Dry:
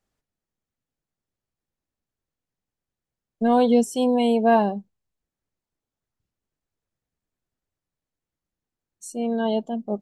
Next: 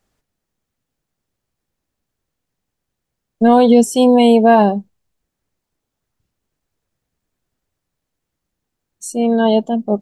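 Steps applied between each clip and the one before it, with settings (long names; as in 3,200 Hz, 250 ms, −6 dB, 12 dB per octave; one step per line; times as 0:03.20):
boost into a limiter +11 dB
level −1 dB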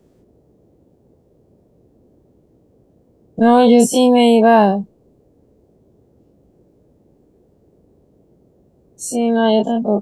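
every bin's largest magnitude spread in time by 60 ms
noise in a band 43–490 Hz −52 dBFS
level −2 dB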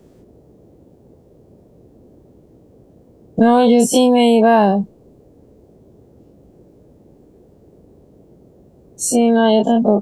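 downward compressor 4 to 1, threshold −16 dBFS, peak gain reduction 8.5 dB
level +6.5 dB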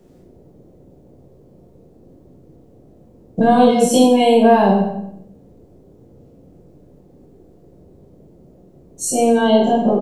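on a send: repeating echo 90 ms, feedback 35%, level −11 dB
on the sum: rectangular room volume 170 cubic metres, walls mixed, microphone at 0.96 metres
level −4 dB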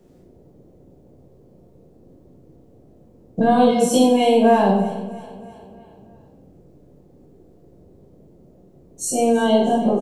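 repeating echo 320 ms, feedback 54%, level −18.5 dB
level −3 dB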